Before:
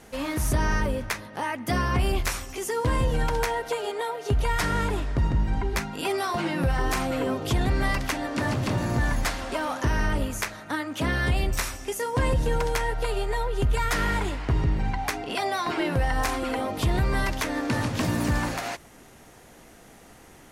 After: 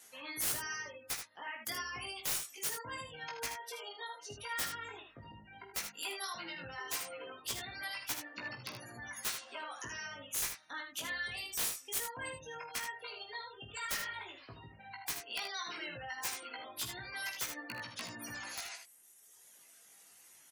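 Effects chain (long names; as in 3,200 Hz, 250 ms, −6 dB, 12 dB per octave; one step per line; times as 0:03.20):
high-pass filter 84 Hz 24 dB per octave
gate on every frequency bin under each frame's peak −25 dB strong
first-order pre-emphasis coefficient 0.9
reverb reduction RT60 1.7 s
low-shelf EQ 400 Hz −10.5 dB
wrap-around overflow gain 29.5 dB
chorus effect 0.12 Hz, delay 16.5 ms, depth 2.9 ms
on a send: ambience of single reflections 48 ms −12.5 dB, 78 ms −7.5 dB
on the sum: level +5 dB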